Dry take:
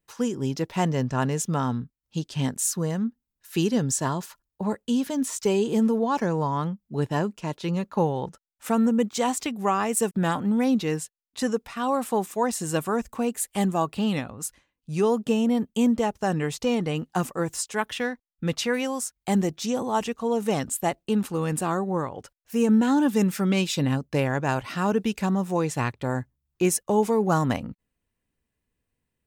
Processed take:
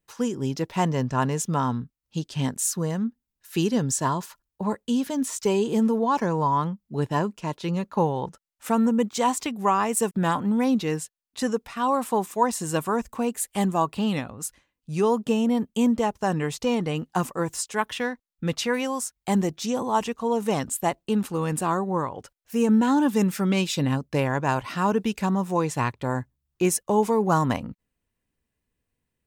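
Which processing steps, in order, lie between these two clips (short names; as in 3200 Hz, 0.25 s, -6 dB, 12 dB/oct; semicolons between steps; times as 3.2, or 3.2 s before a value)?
dynamic EQ 1000 Hz, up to +7 dB, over -45 dBFS, Q 5.3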